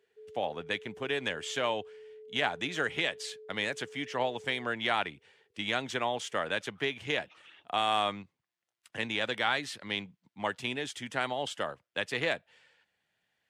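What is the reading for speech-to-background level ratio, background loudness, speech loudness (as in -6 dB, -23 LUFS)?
18.0 dB, -51.0 LUFS, -33.0 LUFS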